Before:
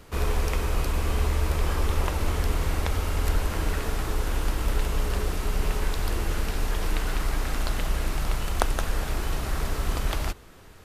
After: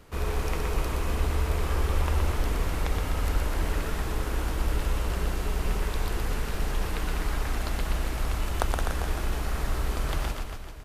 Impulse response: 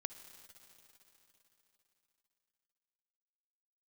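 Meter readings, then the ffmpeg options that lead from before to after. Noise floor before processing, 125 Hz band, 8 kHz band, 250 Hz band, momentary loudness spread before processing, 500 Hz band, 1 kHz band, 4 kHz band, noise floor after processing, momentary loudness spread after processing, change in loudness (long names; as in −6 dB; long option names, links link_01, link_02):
−47 dBFS, −1.5 dB, −3.0 dB, −1.0 dB, 3 LU, −1.5 dB, −1.5 dB, −2.5 dB, −34 dBFS, 4 LU, −1.5 dB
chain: -filter_complex "[0:a]aecho=1:1:120|252|397.2|556.9|732.6:0.631|0.398|0.251|0.158|0.1,asplit=2[link_01][link_02];[1:a]atrim=start_sample=2205,lowpass=3700[link_03];[link_02][link_03]afir=irnorm=-1:irlink=0,volume=-10.5dB[link_04];[link_01][link_04]amix=inputs=2:normalize=0,volume=-5dB"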